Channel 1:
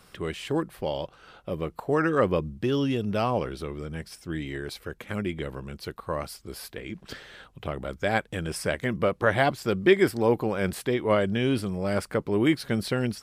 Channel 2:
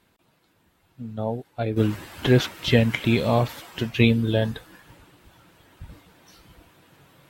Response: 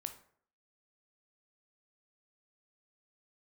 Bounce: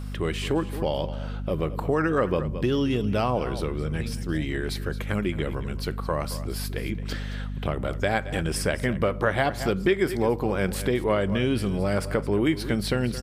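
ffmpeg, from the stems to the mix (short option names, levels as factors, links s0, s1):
-filter_complex "[0:a]aeval=exprs='val(0)+0.0141*(sin(2*PI*50*n/s)+sin(2*PI*2*50*n/s)/2+sin(2*PI*3*50*n/s)/3+sin(2*PI*4*50*n/s)/4+sin(2*PI*5*50*n/s)/5)':c=same,volume=1.26,asplit=4[s0][s1][s2][s3];[s1]volume=0.562[s4];[s2]volume=0.237[s5];[1:a]afwtdn=0.0251,volume=0.266[s6];[s3]apad=whole_len=321629[s7];[s6][s7]sidechaincompress=threshold=0.02:ratio=8:attack=16:release=1270[s8];[2:a]atrim=start_sample=2205[s9];[s4][s9]afir=irnorm=-1:irlink=0[s10];[s5]aecho=0:1:220:1[s11];[s0][s8][s10][s11]amix=inputs=4:normalize=0,acompressor=threshold=0.0794:ratio=2.5"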